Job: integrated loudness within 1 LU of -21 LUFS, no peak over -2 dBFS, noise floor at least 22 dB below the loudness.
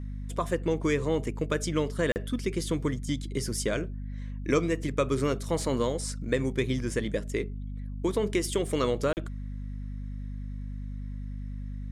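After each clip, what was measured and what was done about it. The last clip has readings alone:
dropouts 2; longest dropout 39 ms; hum 50 Hz; harmonics up to 250 Hz; hum level -33 dBFS; loudness -30.5 LUFS; peak -13.0 dBFS; loudness target -21.0 LUFS
-> interpolate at 2.12/9.13, 39 ms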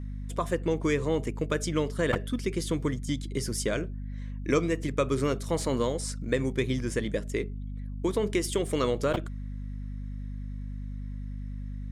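dropouts 0; hum 50 Hz; harmonics up to 250 Hz; hum level -33 dBFS
-> de-hum 50 Hz, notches 5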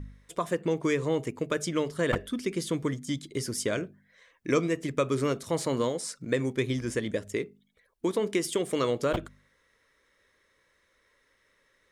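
hum none; loudness -30.0 LUFS; peak -12.5 dBFS; loudness target -21.0 LUFS
-> gain +9 dB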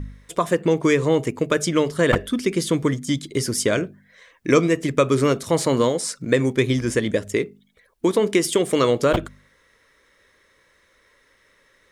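loudness -21.0 LUFS; peak -3.5 dBFS; noise floor -61 dBFS

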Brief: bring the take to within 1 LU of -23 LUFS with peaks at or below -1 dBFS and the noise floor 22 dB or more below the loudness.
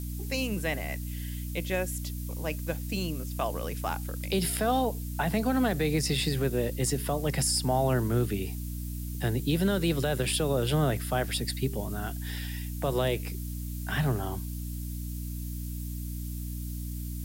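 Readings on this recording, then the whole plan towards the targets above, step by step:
hum 60 Hz; harmonics up to 300 Hz; hum level -33 dBFS; noise floor -36 dBFS; noise floor target -53 dBFS; loudness -30.5 LUFS; peak -15.5 dBFS; loudness target -23.0 LUFS
-> de-hum 60 Hz, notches 5; denoiser 17 dB, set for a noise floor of -36 dBFS; gain +7.5 dB

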